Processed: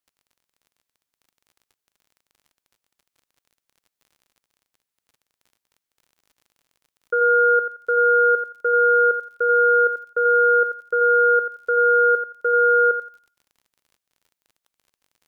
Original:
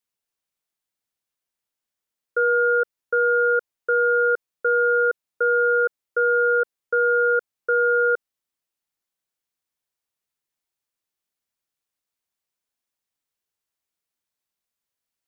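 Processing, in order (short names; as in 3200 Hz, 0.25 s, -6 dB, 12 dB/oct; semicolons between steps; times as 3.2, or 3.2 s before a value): whole clip reversed; thinning echo 86 ms, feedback 30%, high-pass 920 Hz, level -4.5 dB; crackle 40/s -45 dBFS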